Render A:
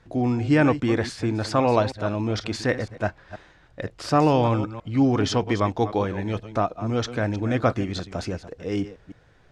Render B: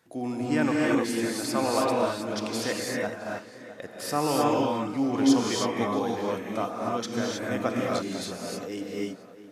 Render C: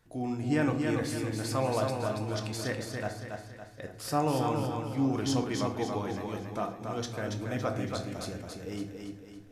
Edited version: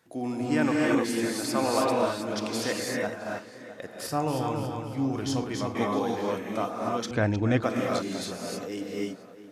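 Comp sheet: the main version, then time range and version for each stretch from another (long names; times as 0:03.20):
B
0:04.07–0:05.75: punch in from C
0:07.11–0:07.63: punch in from A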